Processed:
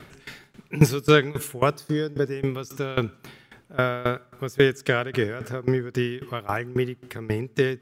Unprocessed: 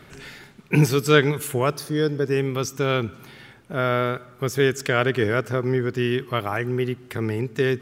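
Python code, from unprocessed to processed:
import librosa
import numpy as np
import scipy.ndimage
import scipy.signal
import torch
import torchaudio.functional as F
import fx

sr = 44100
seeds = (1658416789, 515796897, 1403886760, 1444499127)

y = fx.tremolo_decay(x, sr, direction='decaying', hz=3.7, depth_db=20)
y = F.gain(torch.from_numpy(y), 4.0).numpy()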